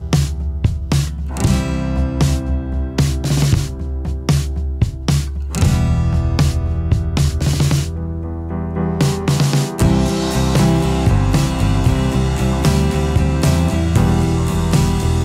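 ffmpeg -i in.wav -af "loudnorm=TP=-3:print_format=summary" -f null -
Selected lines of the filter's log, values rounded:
Input Integrated:    -17.0 LUFS
Input True Peak:      -3.2 dBTP
Input LRA:             2.6 LU
Input Threshold:     -27.0 LUFS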